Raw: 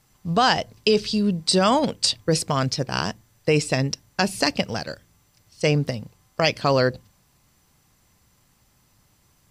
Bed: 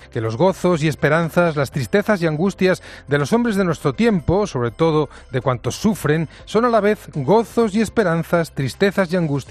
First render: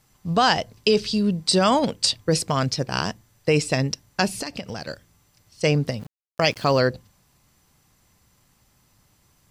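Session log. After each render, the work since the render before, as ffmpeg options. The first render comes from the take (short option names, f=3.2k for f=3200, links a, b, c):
-filter_complex "[0:a]asettb=1/sr,asplit=3[a][b][c];[a]atrim=end=4.424[d];[b]atrim=start=4.42:end=4.88,asetpts=PTS-STARTPTS,afade=t=in:d=0.004:c=qsin,afade=t=out:st=0.456:d=0.004:c=qsin,acompressor=threshold=-27dB:ratio=6:attack=3.2:release=140:knee=1:detection=peak[e];[c]atrim=start=4.876[f];[d][e]acrossfade=d=0.004:c1=hsin:c2=qsin[g];[g][f]acrossfade=d=0.004:c1=qsin:c2=hsin,asplit=3[h][i][j];[h]afade=t=out:st=5.98:d=0.02[k];[i]aeval=exprs='val(0)*gte(abs(val(0)),0.00841)':c=same,afade=t=in:st=5.98:d=0.02,afade=t=out:st=6.8:d=0.02[l];[j]afade=t=in:st=6.8:d=0.02[m];[k][l][m]amix=inputs=3:normalize=0"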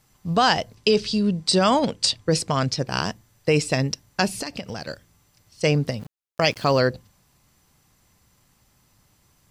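-filter_complex "[0:a]asettb=1/sr,asplit=3[a][b][c];[a]atrim=end=0.754[d];[b]atrim=start=0.75:end=2.86,asetpts=PTS-STARTPTS,afade=t=in:d=0.004:c=qsin,afade=t=out:st=2.106:d=0.004:c=qsin,lowpass=10k[e];[c]atrim=start=2.856[f];[d][e]acrossfade=d=0.004:c1=hsin:c2=qsin[g];[g][f]acrossfade=d=0.004:c1=qsin:c2=hsin"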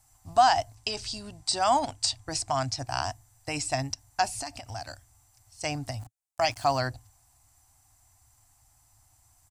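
-filter_complex "[0:a]acrossover=split=6600[a][b];[b]acompressor=threshold=-42dB:ratio=4:attack=1:release=60[c];[a][c]amix=inputs=2:normalize=0,firequalizer=gain_entry='entry(110,0);entry(180,-29);entry(270,-9);entry(480,-25);entry(700,3);entry(1100,-6);entry(3300,-10);entry(8000,6);entry(13000,-2)':delay=0.05:min_phase=1"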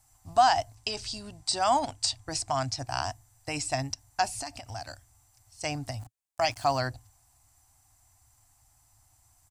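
-af "volume=-1dB"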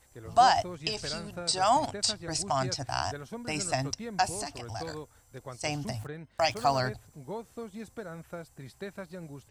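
-filter_complex "[1:a]volume=-24dB[a];[0:a][a]amix=inputs=2:normalize=0"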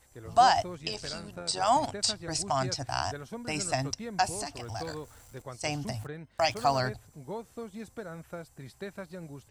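-filter_complex "[0:a]asplit=3[a][b][c];[a]afade=t=out:st=0.8:d=0.02[d];[b]tremolo=f=93:d=0.571,afade=t=in:st=0.8:d=0.02,afade=t=out:st=1.67:d=0.02[e];[c]afade=t=in:st=1.67:d=0.02[f];[d][e][f]amix=inputs=3:normalize=0,asettb=1/sr,asplit=3[g][h][i];[g]atrim=end=4.604[j];[h]atrim=start=4.6:end=5.42,asetpts=PTS-STARTPTS,afade=t=in:d=0.004:c=qsin,afade=t=out:st=0.816:d=0.004:c=qsin,aeval=exprs='val(0)+0.5*0.00251*sgn(val(0))':c=same[k];[i]atrim=start=5.416[l];[j][k]acrossfade=d=0.004:c1=hsin:c2=qsin[m];[m][l]acrossfade=d=0.004:c1=qsin:c2=hsin"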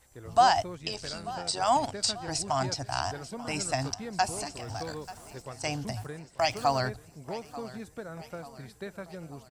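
-af "aecho=1:1:888|1776|2664|3552|4440:0.141|0.0749|0.0397|0.021|0.0111"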